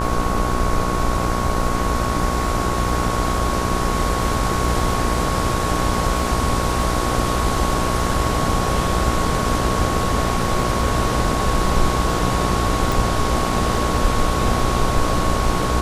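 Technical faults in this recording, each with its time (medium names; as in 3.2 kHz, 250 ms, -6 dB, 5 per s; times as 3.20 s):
buzz 60 Hz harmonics 25 -24 dBFS
crackle 17 per s -28 dBFS
whine 1.1 kHz -25 dBFS
12.92 s: pop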